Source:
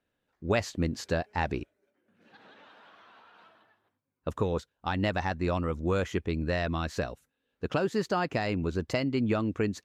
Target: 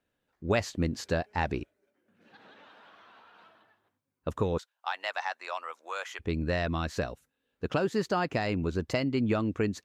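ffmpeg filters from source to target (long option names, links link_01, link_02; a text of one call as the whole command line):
ffmpeg -i in.wav -filter_complex "[0:a]asplit=3[link_01][link_02][link_03];[link_01]afade=type=out:start_time=4.57:duration=0.02[link_04];[link_02]highpass=frequency=730:width=0.5412,highpass=frequency=730:width=1.3066,afade=type=in:start_time=4.57:duration=0.02,afade=type=out:start_time=6.19:duration=0.02[link_05];[link_03]afade=type=in:start_time=6.19:duration=0.02[link_06];[link_04][link_05][link_06]amix=inputs=3:normalize=0" out.wav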